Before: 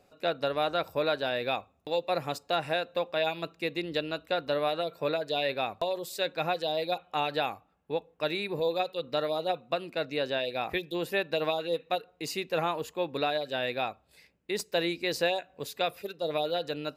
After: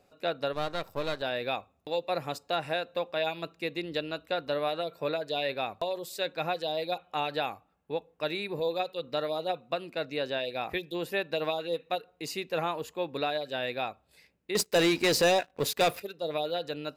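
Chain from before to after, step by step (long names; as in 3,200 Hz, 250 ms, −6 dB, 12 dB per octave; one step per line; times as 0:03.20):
0:00.53–0:01.22: gain on one half-wave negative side −12 dB
0:14.55–0:16.00: leveller curve on the samples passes 3
level −1.5 dB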